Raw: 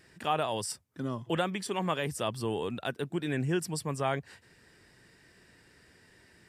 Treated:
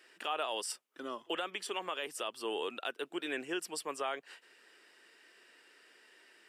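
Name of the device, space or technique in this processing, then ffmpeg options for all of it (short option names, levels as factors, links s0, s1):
laptop speaker: -af "highpass=f=330:w=0.5412,highpass=f=330:w=1.3066,equalizer=f=1300:t=o:w=0.45:g=5,equalizer=f=2900:t=o:w=0.52:g=8.5,alimiter=limit=0.0841:level=0:latency=1:release=196,volume=0.708"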